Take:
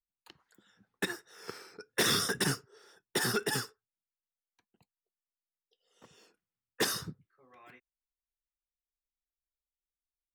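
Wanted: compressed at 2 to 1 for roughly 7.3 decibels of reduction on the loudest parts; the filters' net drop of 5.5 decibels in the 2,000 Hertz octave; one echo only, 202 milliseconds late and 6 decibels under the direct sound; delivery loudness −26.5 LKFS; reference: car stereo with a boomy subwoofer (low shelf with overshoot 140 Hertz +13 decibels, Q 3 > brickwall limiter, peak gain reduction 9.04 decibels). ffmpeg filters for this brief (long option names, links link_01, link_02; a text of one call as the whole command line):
ffmpeg -i in.wav -af "equalizer=frequency=2000:width_type=o:gain=-7,acompressor=threshold=-40dB:ratio=2,lowshelf=frequency=140:width_type=q:width=3:gain=13,aecho=1:1:202:0.501,volume=17dB,alimiter=limit=-15dB:level=0:latency=1" out.wav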